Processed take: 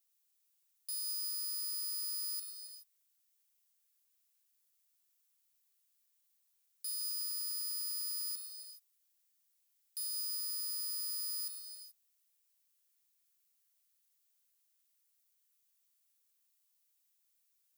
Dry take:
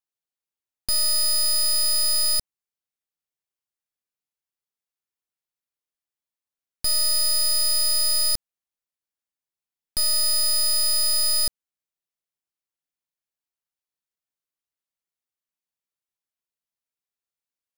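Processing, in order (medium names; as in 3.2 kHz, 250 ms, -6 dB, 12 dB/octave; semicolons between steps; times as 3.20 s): 6.96–10.11 s: high-pass 75 Hz 24 dB/octave; tilt EQ +4.5 dB/octave; peak limiter -29.5 dBFS, peak gain reduction 28.5 dB; gated-style reverb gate 450 ms flat, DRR 4 dB; trim -2 dB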